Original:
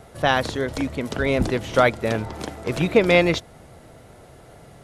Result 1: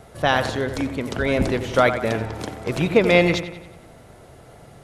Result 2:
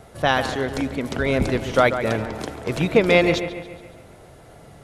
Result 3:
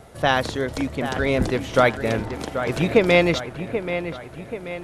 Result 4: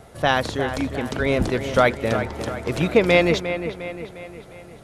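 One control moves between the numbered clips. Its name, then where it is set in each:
feedback echo behind a low-pass, time: 91 ms, 140 ms, 783 ms, 354 ms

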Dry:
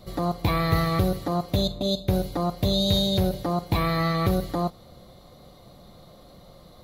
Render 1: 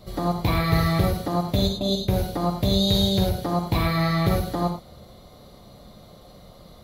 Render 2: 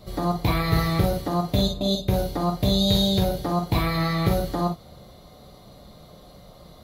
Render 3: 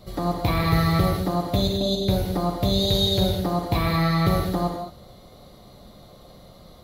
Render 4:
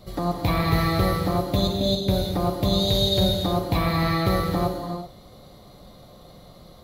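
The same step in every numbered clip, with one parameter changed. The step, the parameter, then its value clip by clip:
gated-style reverb, gate: 130 ms, 80 ms, 240 ms, 410 ms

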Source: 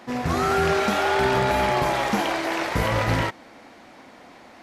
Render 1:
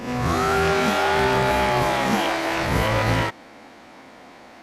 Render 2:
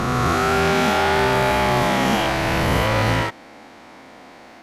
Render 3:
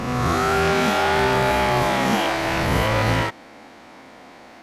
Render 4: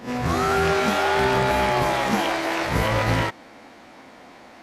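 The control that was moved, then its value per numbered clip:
reverse spectral sustain, rising 60 dB in: 0.65 s, 2.98 s, 1.38 s, 0.31 s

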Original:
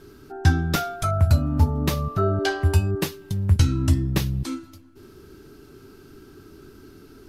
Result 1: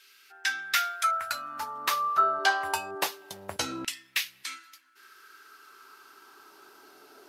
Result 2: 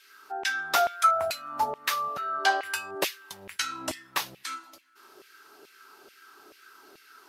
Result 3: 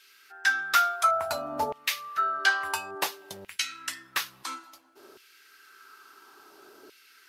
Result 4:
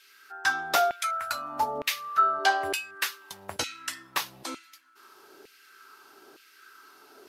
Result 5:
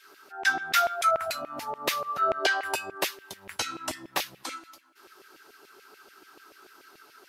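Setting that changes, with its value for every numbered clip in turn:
LFO high-pass, rate: 0.26 Hz, 2.3 Hz, 0.58 Hz, 1.1 Hz, 6.9 Hz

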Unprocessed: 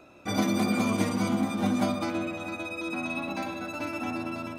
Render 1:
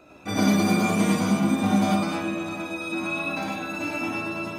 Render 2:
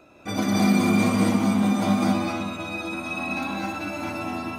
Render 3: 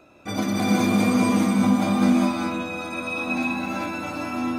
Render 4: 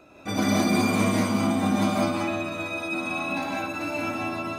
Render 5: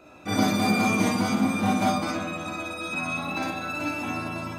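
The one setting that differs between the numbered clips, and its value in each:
gated-style reverb, gate: 130 ms, 300 ms, 440 ms, 200 ms, 80 ms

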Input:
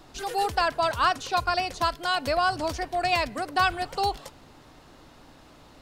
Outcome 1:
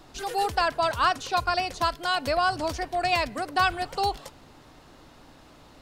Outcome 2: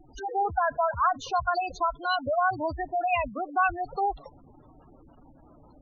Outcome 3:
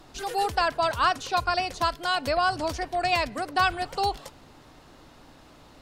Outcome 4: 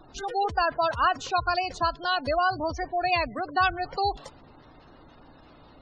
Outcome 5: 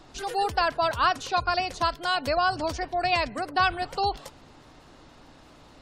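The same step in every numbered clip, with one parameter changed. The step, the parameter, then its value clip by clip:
spectral gate, under each frame's peak: -60 dB, -10 dB, -50 dB, -20 dB, -35 dB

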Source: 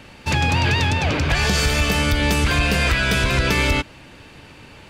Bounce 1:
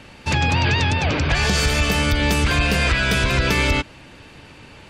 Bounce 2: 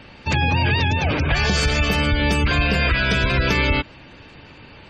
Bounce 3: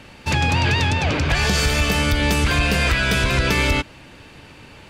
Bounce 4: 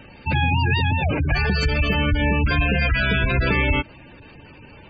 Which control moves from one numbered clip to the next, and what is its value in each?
spectral gate, under each frame's peak: -40 dB, -25 dB, -55 dB, -15 dB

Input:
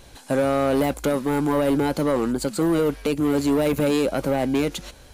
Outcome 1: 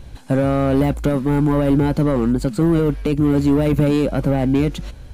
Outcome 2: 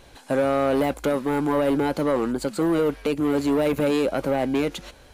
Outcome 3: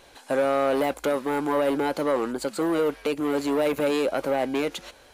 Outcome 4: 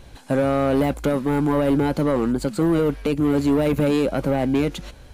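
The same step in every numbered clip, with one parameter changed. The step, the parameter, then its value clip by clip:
tone controls, bass: +13 dB, -4 dB, -15 dB, +5 dB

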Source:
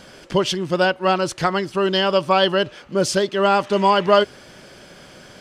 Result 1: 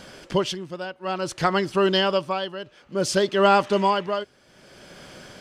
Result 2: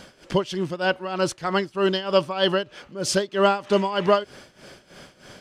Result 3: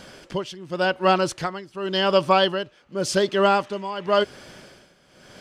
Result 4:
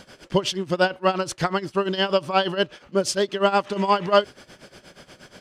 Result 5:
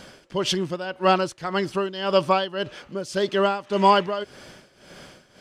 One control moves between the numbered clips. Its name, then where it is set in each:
tremolo, rate: 0.58 Hz, 3.2 Hz, 0.9 Hz, 8.4 Hz, 1.8 Hz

